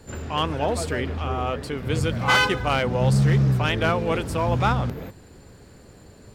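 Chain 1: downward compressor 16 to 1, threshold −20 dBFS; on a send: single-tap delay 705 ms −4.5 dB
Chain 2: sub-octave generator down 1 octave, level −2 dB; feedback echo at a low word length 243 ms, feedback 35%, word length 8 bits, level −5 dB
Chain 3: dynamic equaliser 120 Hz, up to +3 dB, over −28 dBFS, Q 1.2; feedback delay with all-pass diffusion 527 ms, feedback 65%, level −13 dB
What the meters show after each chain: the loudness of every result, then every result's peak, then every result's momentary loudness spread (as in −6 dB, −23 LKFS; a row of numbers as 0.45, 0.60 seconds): −25.0, −21.0, −21.5 LKFS; −11.5, −6.5, −9.0 dBFS; 7, 9, 17 LU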